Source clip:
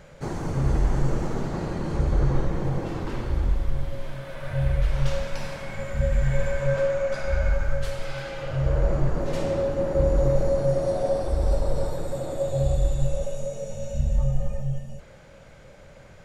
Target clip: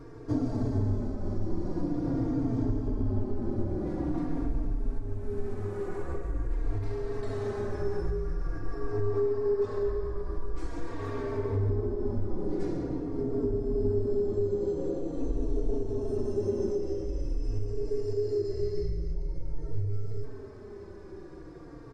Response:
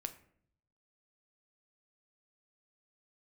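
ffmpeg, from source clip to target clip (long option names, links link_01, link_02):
-filter_complex "[0:a]equalizer=frequency=400:width_type=o:width=0.67:gain=11,equalizer=frequency=1600:width_type=o:width=0.67:gain=-3,equalizer=frequency=4000:width_type=o:width=0.67:gain=-10,acompressor=threshold=-27dB:ratio=6,aecho=1:1:104:0.282,asplit=2[link_01][link_02];[1:a]atrim=start_sample=2205,lowpass=2700[link_03];[link_02][link_03]afir=irnorm=-1:irlink=0,volume=-2.5dB[link_04];[link_01][link_04]amix=inputs=2:normalize=0,asetrate=32667,aresample=44100,asplit=2[link_05][link_06];[link_06]adelay=3.8,afreqshift=-0.46[link_07];[link_05][link_07]amix=inputs=2:normalize=1"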